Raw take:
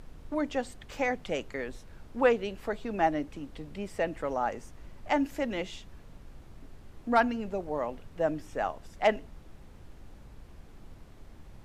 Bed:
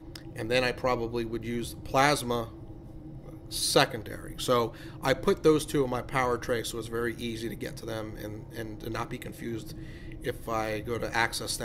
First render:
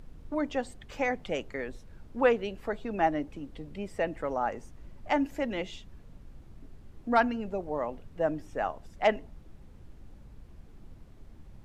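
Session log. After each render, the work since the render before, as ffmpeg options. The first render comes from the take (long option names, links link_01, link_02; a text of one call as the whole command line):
ffmpeg -i in.wav -af "afftdn=noise_reduction=6:noise_floor=-51" out.wav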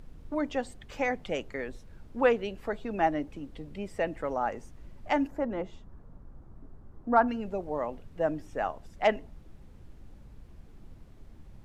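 ffmpeg -i in.wav -filter_complex "[0:a]asplit=3[link_01][link_02][link_03];[link_01]afade=type=out:start_time=5.26:duration=0.02[link_04];[link_02]highshelf=frequency=1800:width_type=q:width=1.5:gain=-12.5,afade=type=in:start_time=5.26:duration=0.02,afade=type=out:start_time=7.27:duration=0.02[link_05];[link_03]afade=type=in:start_time=7.27:duration=0.02[link_06];[link_04][link_05][link_06]amix=inputs=3:normalize=0" out.wav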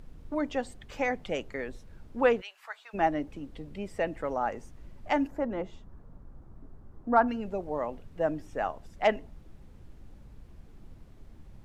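ffmpeg -i in.wav -filter_complex "[0:a]asplit=3[link_01][link_02][link_03];[link_01]afade=type=out:start_time=2.4:duration=0.02[link_04];[link_02]highpass=frequency=970:width=0.5412,highpass=frequency=970:width=1.3066,afade=type=in:start_time=2.4:duration=0.02,afade=type=out:start_time=2.93:duration=0.02[link_05];[link_03]afade=type=in:start_time=2.93:duration=0.02[link_06];[link_04][link_05][link_06]amix=inputs=3:normalize=0" out.wav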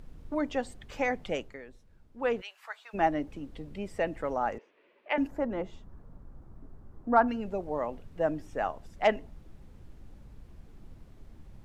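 ffmpeg -i in.wav -filter_complex "[0:a]asettb=1/sr,asplit=3[link_01][link_02][link_03];[link_01]atrim=end=4.584[link_04];[link_02]atrim=start=4.58:end=5.18,asetpts=PTS-STARTPTS,afade=type=in:duration=0.004:curve=qsin,afade=type=out:start_time=0.596:duration=0.004:curve=qsin,highpass=frequency=410:width=0.5412,highpass=frequency=410:width=1.3066,equalizer=frequency=430:width_type=q:width=4:gain=4,equalizer=frequency=770:width_type=q:width=4:gain=-9,equalizer=frequency=1300:width_type=q:width=4:gain=-4,equalizer=frequency=2500:width_type=q:width=4:gain=6,lowpass=frequency=3300:width=0.5412,lowpass=frequency=3300:width=1.3066[link_05];[link_03]atrim=start=5.176[link_06];[link_04][link_05]acrossfade=duration=0.004:curve1=hsin:curve2=qsin[link_07];[link_07][link_06]acrossfade=duration=0.004:curve1=qsin:curve2=hsin,asplit=3[link_08][link_09][link_10];[link_08]atrim=end=1.6,asetpts=PTS-STARTPTS,afade=type=out:start_time=1.34:duration=0.26:silence=0.281838[link_11];[link_09]atrim=start=1.6:end=2.19,asetpts=PTS-STARTPTS,volume=-11dB[link_12];[link_10]atrim=start=2.19,asetpts=PTS-STARTPTS,afade=type=in:duration=0.26:silence=0.281838[link_13];[link_11][link_12][link_13]concat=n=3:v=0:a=1" out.wav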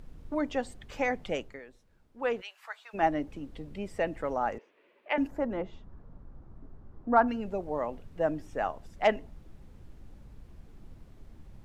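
ffmpeg -i in.wav -filter_complex "[0:a]asettb=1/sr,asplit=3[link_01][link_02][link_03];[link_01]atrim=end=1.594[link_04];[link_02]atrim=start=1.59:end=3.03,asetpts=PTS-STARTPTS,afade=type=in:duration=0.004:curve=qsin,afade=type=out:start_time=1.436:duration=0.004:curve=qsin,lowshelf=frequency=210:gain=-7.5[link_05];[link_03]atrim=start=3.026[link_06];[link_04][link_05]acrossfade=duration=0.004:curve1=hsin:curve2=qsin[link_07];[link_07][link_06]acrossfade=duration=0.004:curve1=qsin:curve2=hsin,asettb=1/sr,asplit=3[link_08][link_09][link_10];[link_08]atrim=end=5.574[link_11];[link_09]atrim=start=5.57:end=7.19,asetpts=PTS-STARTPTS,afade=type=in:duration=0.004:curve=qsin,afade=type=out:start_time=1.616:duration=0.004:curve=qsin,lowpass=4600[link_12];[link_10]atrim=start=7.186[link_13];[link_11][link_12]acrossfade=duration=0.004:curve1=hsin:curve2=qsin[link_14];[link_14][link_13]acrossfade=duration=0.004:curve1=qsin:curve2=hsin" out.wav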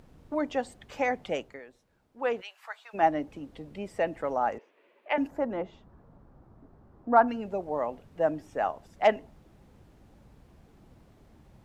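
ffmpeg -i in.wav -af "highpass=frequency=110:poles=1,equalizer=frequency=740:width=1.4:gain=3.5" out.wav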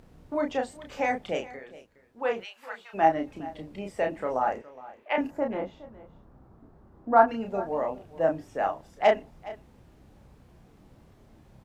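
ffmpeg -i in.wav -filter_complex "[0:a]asplit=2[link_01][link_02];[link_02]adelay=31,volume=-4dB[link_03];[link_01][link_03]amix=inputs=2:normalize=0,aecho=1:1:415:0.119" out.wav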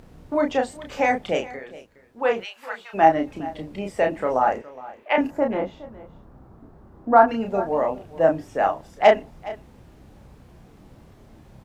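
ffmpeg -i in.wav -af "volume=6.5dB,alimiter=limit=-3dB:level=0:latency=1" out.wav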